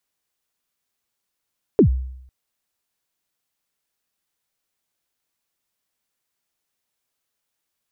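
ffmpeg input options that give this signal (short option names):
-f lavfi -i "aevalsrc='0.447*pow(10,-3*t/0.76)*sin(2*PI*(480*0.098/log(64/480)*(exp(log(64/480)*min(t,0.098)/0.098)-1)+64*max(t-0.098,0)))':d=0.5:s=44100"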